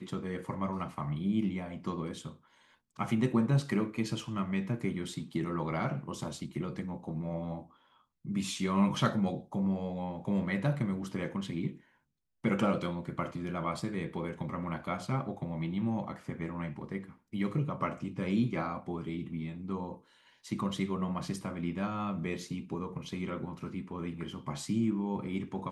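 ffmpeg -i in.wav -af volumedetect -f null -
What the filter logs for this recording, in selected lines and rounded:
mean_volume: -34.2 dB
max_volume: -14.5 dB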